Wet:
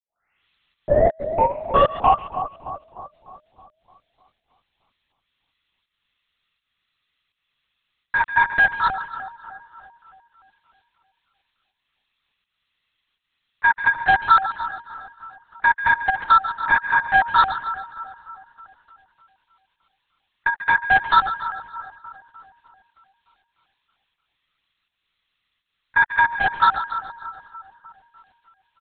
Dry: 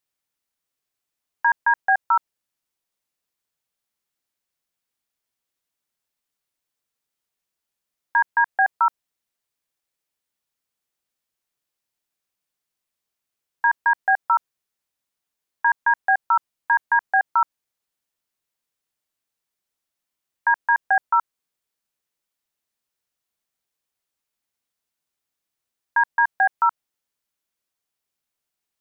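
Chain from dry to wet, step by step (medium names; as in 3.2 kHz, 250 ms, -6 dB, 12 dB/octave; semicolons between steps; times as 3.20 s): tape start-up on the opening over 2.58 s; high-pass 800 Hz 6 dB/octave; tilt EQ +4.5 dB/octave; comb 1.5 ms, depth 48%; in parallel at +0.5 dB: peak limiter -20.5 dBFS, peak gain reduction 11 dB; on the sum: saturation -10.5 dBFS, distortion -19 dB; volume shaper 82 bpm, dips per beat 1, -15 dB, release 238 ms; two-band feedback delay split 1.3 kHz, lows 306 ms, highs 140 ms, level -11 dB; LPC vocoder at 8 kHz whisper; trim +4 dB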